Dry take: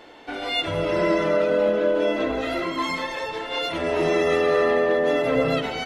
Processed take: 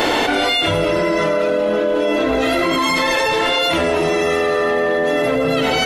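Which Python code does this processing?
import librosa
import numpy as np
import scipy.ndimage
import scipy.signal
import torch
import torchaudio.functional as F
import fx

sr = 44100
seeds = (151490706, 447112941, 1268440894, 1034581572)

p1 = fx.high_shelf(x, sr, hz=7600.0, db=11.0)
p2 = p1 + fx.echo_single(p1, sr, ms=83, db=-11.5, dry=0)
y = fx.env_flatten(p2, sr, amount_pct=100)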